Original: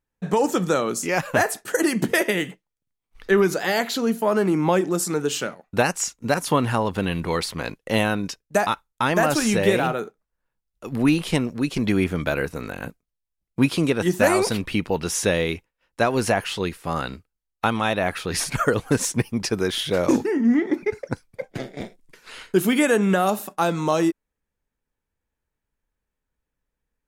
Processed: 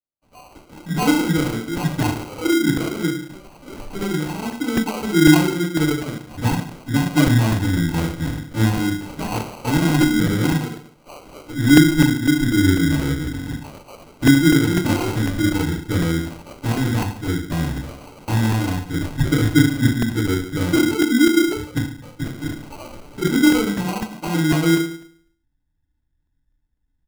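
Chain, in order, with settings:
flat-topped bell 520 Hz −14 dB 1 octave
multiband delay without the direct sound highs, lows 640 ms, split 1,700 Hz
feedback delay network reverb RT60 0.61 s, low-frequency decay 1×, high-frequency decay 0.9×, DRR −7.5 dB
formants moved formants +2 semitones
spectral tilt −3.5 dB per octave
decimation without filtering 25×
regular buffer underruns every 0.25 s, samples 128, repeat, from 0:00.52
level −9 dB

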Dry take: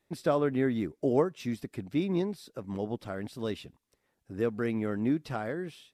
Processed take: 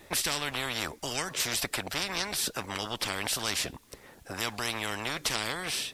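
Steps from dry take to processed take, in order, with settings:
dynamic equaliser 4,700 Hz, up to +5 dB, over −54 dBFS, Q 0.87
every bin compressed towards the loudest bin 10 to 1

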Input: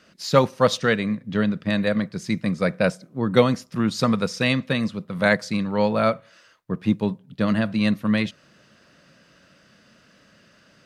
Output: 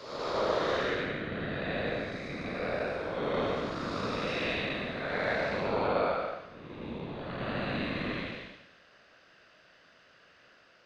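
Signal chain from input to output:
spectrum smeared in time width 436 ms
three-way crossover with the lows and the highs turned down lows −14 dB, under 410 Hz, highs −20 dB, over 5,000 Hz
random phases in short frames

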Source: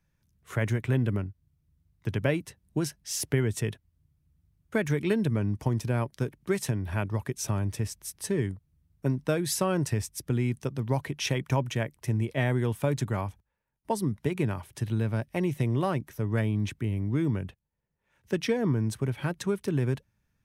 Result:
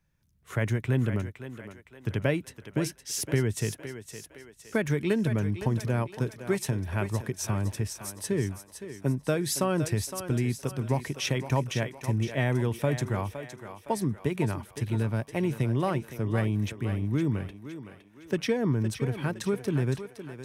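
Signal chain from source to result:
feedback echo with a high-pass in the loop 513 ms, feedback 48%, high-pass 330 Hz, level −9 dB

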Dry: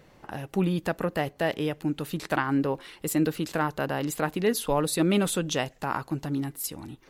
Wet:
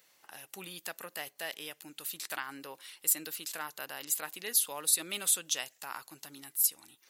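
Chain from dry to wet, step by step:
first difference
level +4 dB

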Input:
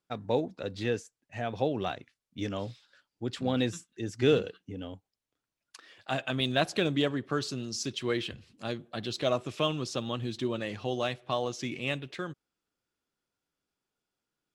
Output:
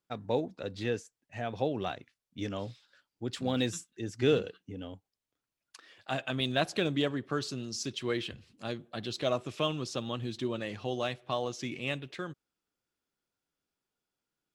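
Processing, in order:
0:03.32–0:03.89: high-shelf EQ 6,100 Hz → 3,700 Hz +8 dB
level −2 dB

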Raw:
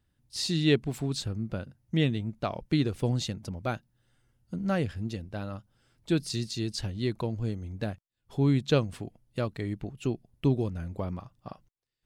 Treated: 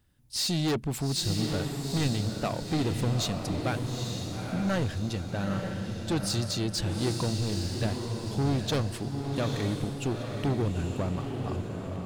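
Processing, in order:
high-shelf EQ 6,900 Hz +4.5 dB
soft clipping −29 dBFS, distortion −7 dB
feedback delay with all-pass diffusion 875 ms, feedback 45%, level −4 dB
level +5 dB

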